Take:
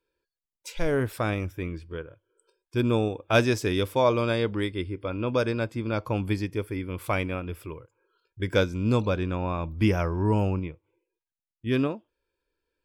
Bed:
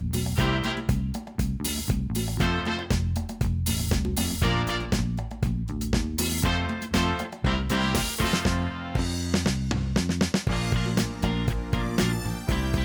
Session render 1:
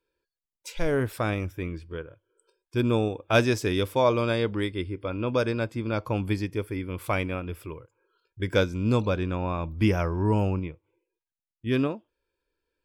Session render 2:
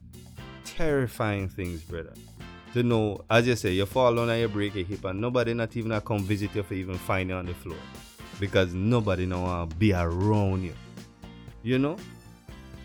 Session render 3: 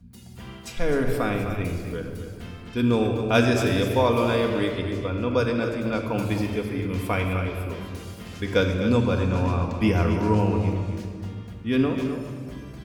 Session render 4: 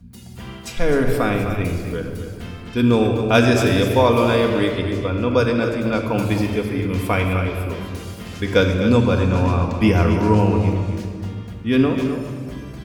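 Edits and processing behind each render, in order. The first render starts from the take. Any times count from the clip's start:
no audible change
add bed -19.5 dB
on a send: delay 257 ms -9.5 dB; on the sum: simulated room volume 3700 m³, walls mixed, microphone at 1.8 m
trim +5.5 dB; peak limiter -2 dBFS, peak gain reduction 2 dB

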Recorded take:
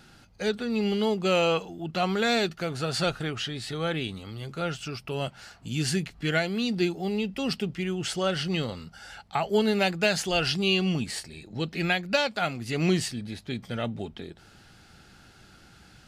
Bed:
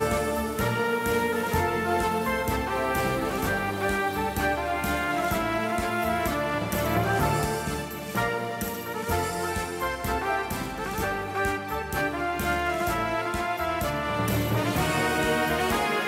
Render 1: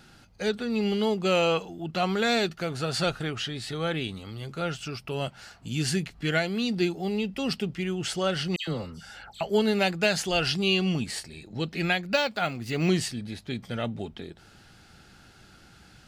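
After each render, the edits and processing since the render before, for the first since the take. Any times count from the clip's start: 8.56–9.41 s: phase dispersion lows, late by 114 ms, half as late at 2.1 kHz; 12.13–12.89 s: decimation joined by straight lines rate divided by 2×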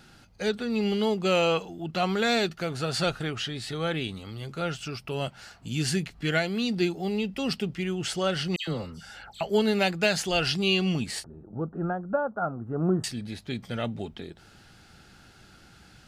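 11.24–13.04 s: elliptic low-pass 1.4 kHz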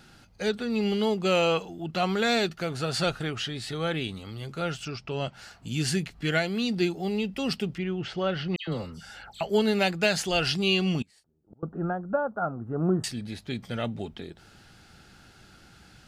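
4.85–5.33 s: Chebyshev low-pass 6.4 kHz, order 3; 7.78–8.72 s: distance through air 240 m; 11.02–11.63 s: inverted gate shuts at -36 dBFS, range -27 dB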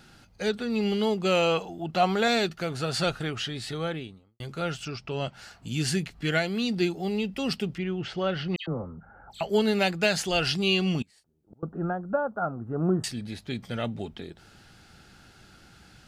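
1.58–2.28 s: peaking EQ 730 Hz +6 dB; 3.68–4.40 s: studio fade out; 8.66–9.30 s: steep low-pass 1.3 kHz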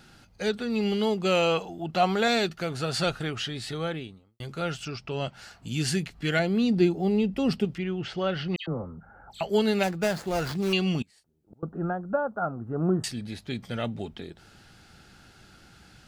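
6.39–7.65 s: tilt shelf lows +5.5 dB, about 1.1 kHz; 9.83–10.73 s: median filter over 15 samples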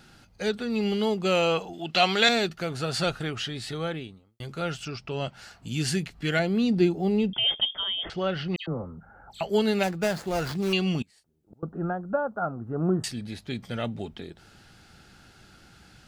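1.73–2.29 s: frequency weighting D; 7.33–8.10 s: frequency inversion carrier 3.4 kHz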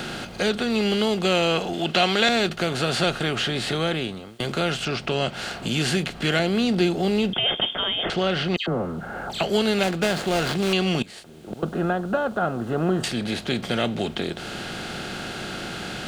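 spectral levelling over time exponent 0.6; three bands compressed up and down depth 40%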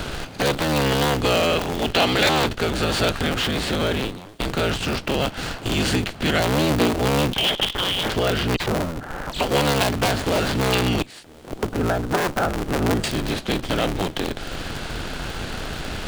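cycle switcher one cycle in 3, inverted; in parallel at -7 dB: Schmitt trigger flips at -24.5 dBFS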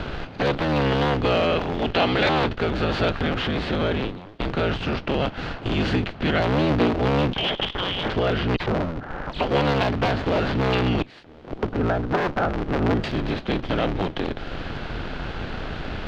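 distance through air 250 m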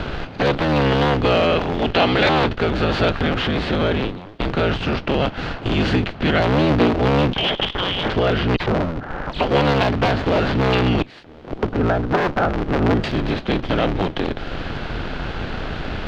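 trim +4 dB

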